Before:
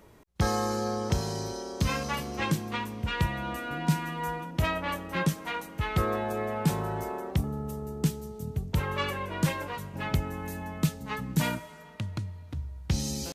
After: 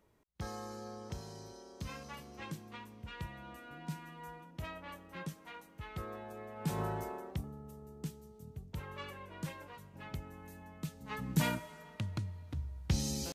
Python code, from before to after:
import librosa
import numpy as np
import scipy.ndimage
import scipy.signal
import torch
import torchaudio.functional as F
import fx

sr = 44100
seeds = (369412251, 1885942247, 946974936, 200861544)

y = fx.gain(x, sr, db=fx.line((6.55, -16.0), (6.81, -3.5), (7.59, -15.0), (10.86, -15.0), (11.27, -4.0)))